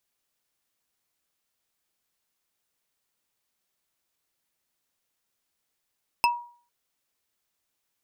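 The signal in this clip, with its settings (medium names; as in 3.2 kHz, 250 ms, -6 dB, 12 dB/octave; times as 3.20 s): wood hit bar, lowest mode 957 Hz, decay 0.45 s, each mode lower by 2.5 dB, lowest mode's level -16 dB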